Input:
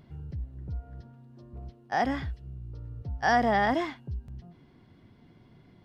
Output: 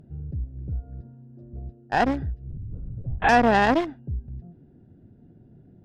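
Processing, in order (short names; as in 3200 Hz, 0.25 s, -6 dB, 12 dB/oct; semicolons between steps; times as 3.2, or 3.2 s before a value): Wiener smoothing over 41 samples; added harmonics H 4 -14 dB, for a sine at -12.5 dBFS; 2.5–3.29 monotone LPC vocoder at 8 kHz 130 Hz; gain +5.5 dB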